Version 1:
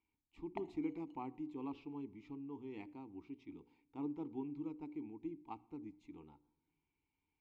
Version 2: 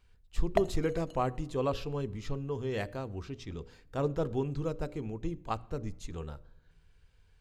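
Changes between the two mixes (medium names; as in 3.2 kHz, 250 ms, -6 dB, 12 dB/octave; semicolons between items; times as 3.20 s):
background: send -9.5 dB; master: remove vowel filter u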